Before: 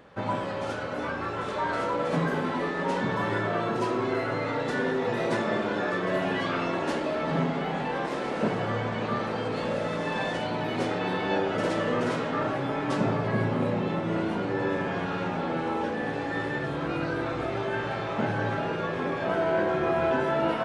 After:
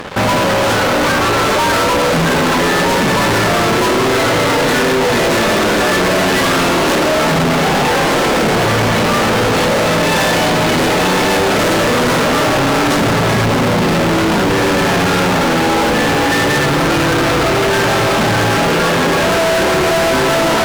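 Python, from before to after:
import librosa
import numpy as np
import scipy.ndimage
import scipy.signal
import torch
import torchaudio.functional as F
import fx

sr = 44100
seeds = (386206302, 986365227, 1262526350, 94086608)

p1 = x + fx.echo_single(x, sr, ms=393, db=-13.5, dry=0)
p2 = fx.fuzz(p1, sr, gain_db=45.0, gate_db=-53.0)
y = p2 * librosa.db_to_amplitude(1.0)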